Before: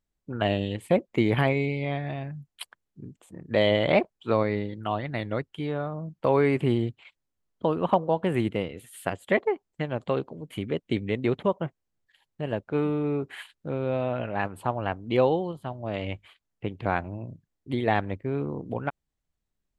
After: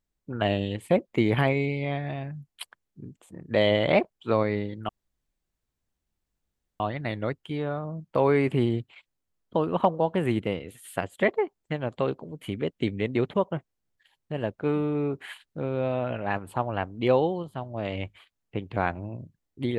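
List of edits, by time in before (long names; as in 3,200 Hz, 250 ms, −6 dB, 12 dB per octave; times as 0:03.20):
0:04.89: splice in room tone 1.91 s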